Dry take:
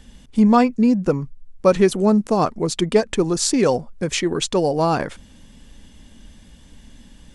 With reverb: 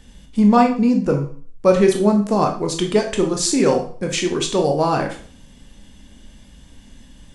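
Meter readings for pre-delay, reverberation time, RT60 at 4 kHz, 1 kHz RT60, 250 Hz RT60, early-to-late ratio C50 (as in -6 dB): 7 ms, 0.45 s, 0.45 s, 0.45 s, 0.40 s, 8.5 dB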